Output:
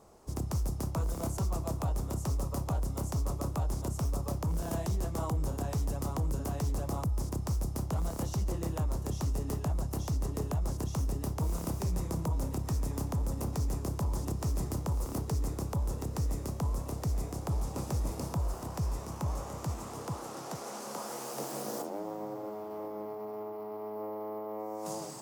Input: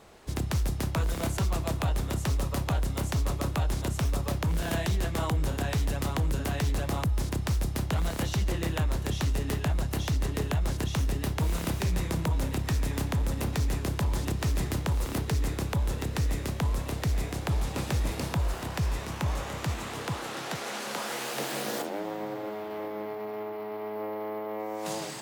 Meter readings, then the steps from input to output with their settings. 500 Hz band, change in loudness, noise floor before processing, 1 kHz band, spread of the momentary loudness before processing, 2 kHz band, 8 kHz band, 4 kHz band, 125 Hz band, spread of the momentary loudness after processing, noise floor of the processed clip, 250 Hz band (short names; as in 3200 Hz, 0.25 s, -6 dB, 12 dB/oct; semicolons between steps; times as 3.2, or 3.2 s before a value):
-4.0 dB, -4.5 dB, -37 dBFS, -4.5 dB, 5 LU, -15.0 dB, -4.0 dB, -11.5 dB, -4.0 dB, 6 LU, -42 dBFS, -4.0 dB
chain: band shelf 2500 Hz -12 dB; gain -4 dB